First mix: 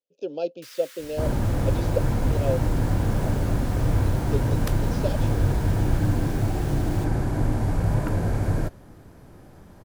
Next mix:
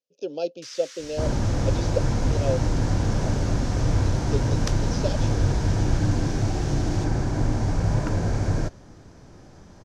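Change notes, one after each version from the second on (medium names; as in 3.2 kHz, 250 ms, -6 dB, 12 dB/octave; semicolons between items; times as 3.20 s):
master: add resonant low-pass 6 kHz, resonance Q 3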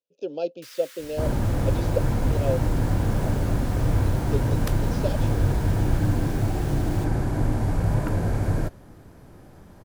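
master: remove resonant low-pass 6 kHz, resonance Q 3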